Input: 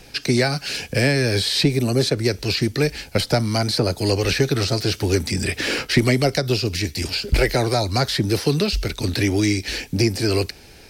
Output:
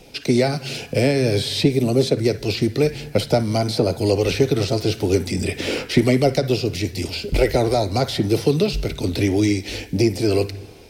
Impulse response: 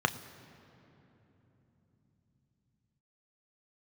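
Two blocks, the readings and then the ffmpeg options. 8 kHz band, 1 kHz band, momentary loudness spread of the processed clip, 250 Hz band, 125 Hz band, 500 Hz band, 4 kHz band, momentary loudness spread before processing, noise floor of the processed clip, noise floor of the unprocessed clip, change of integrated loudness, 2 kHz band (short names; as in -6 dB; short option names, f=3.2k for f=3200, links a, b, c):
-3.5 dB, +0.5 dB, 7 LU, +2.0 dB, -0.5 dB, +3.0 dB, -4.0 dB, 5 LU, -39 dBFS, -45 dBFS, +0.5 dB, -4.5 dB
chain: -filter_complex "[0:a]asplit=2[a][b];[1:a]atrim=start_sample=2205,afade=t=out:st=0.3:d=0.01,atrim=end_sample=13671,asetrate=25137,aresample=44100[c];[b][c]afir=irnorm=-1:irlink=0,volume=-16.5dB[d];[a][d]amix=inputs=2:normalize=0,volume=-2.5dB"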